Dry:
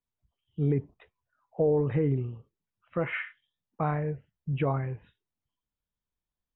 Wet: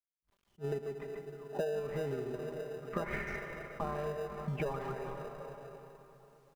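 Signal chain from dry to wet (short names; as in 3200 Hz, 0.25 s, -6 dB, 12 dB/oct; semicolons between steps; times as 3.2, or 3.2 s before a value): graphic EQ 125/500/1000/2000 Hz -5/+8/+11/+8 dB; speakerphone echo 0.14 s, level -6 dB; plate-style reverb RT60 3.5 s, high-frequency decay 0.8×, DRR 13.5 dB; in parallel at -5 dB: sample-rate reducer 1100 Hz, jitter 0%; on the sum: high shelf 2000 Hz -9.5 dB; comb 5 ms, depth 71%; bit-crush 12-bit; compressor 12:1, threshold -31 dBFS, peak gain reduction 21.5 dB; attack slew limiter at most 410 dB/s; gain -2 dB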